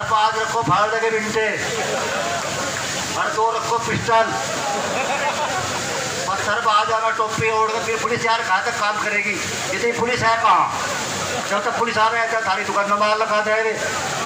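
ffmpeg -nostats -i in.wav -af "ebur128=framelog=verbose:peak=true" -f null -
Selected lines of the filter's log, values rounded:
Integrated loudness:
  I:         -19.5 LUFS
  Threshold: -29.5 LUFS
Loudness range:
  LRA:         1.8 LU
  Threshold: -39.6 LUFS
  LRA low:   -20.5 LUFS
  LRA high:  -18.7 LUFS
True peak:
  Peak:       -7.6 dBFS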